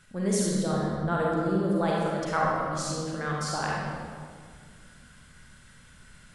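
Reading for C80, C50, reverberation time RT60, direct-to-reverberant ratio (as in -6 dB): 0.0 dB, -2.0 dB, 2.0 s, -4.5 dB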